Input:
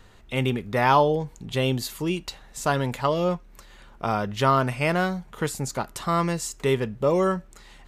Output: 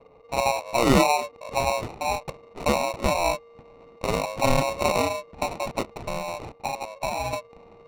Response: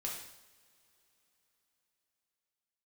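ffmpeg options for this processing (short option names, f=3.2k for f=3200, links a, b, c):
-filter_complex "[0:a]asettb=1/sr,asplit=3[a][b][c];[a]atrim=end=6.044[d];[b]atrim=start=6.04:end=7.33,asetpts=PTS-STARTPTS,afade=t=in:d=0.004:c=qsin,afade=t=out:st=1.286:d=0.004:c=qsin,acrossover=split=82|680[e][f][g];[e]acompressor=threshold=-54dB:ratio=4[h];[f]acompressor=threshold=-30dB:ratio=4[i];[g]acompressor=threshold=-34dB:ratio=4[j];[h][i][j]amix=inputs=3:normalize=0[k];[c]atrim=start=7.326[l];[d][k]acrossfade=d=0.004:c1=hsin:c2=qsin[m];[m][l]acrossfade=d=0.004:c1=qsin:c2=hsin,afreqshift=430,acrusher=samples=27:mix=1:aa=0.000001,adynamicsmooth=sensitivity=8:basefreq=1.1k"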